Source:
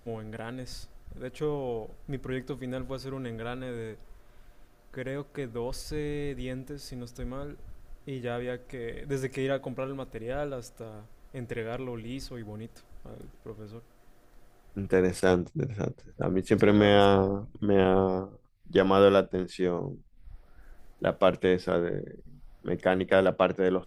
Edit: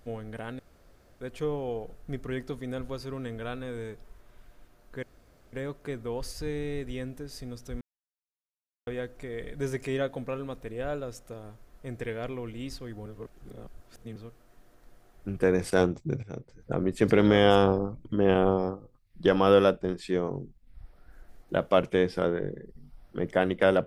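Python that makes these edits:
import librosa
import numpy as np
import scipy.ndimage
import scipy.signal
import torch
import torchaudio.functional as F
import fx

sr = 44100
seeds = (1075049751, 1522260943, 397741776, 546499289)

y = fx.edit(x, sr, fx.room_tone_fill(start_s=0.59, length_s=0.62),
    fx.insert_room_tone(at_s=5.03, length_s=0.5),
    fx.silence(start_s=7.31, length_s=1.06),
    fx.reverse_span(start_s=12.56, length_s=1.1),
    fx.fade_in_from(start_s=15.73, length_s=0.52, floor_db=-12.5), tone=tone)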